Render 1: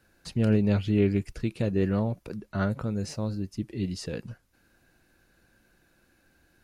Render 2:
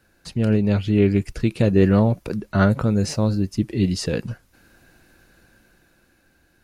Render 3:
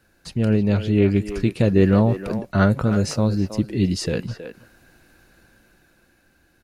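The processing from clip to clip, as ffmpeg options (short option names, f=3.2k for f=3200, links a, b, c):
-af "dynaudnorm=f=230:g=11:m=7dB,volume=3.5dB"
-filter_complex "[0:a]asplit=2[a][b];[b]adelay=320,highpass=300,lowpass=3.4k,asoftclip=type=hard:threshold=-14dB,volume=-9dB[c];[a][c]amix=inputs=2:normalize=0"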